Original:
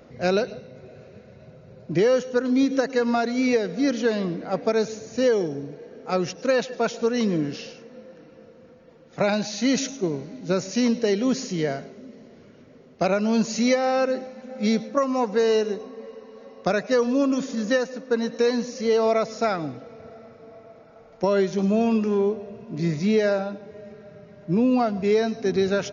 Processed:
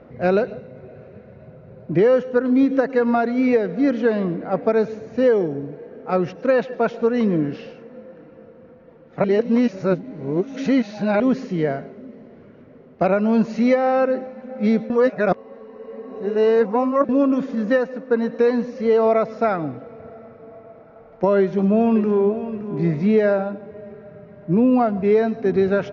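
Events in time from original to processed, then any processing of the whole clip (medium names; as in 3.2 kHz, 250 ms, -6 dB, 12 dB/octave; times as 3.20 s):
9.24–11.20 s: reverse
14.90–17.09 s: reverse
21.38–22.49 s: echo throw 570 ms, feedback 25%, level -12 dB
whole clip: low-pass 1.9 kHz 12 dB/octave; trim +4 dB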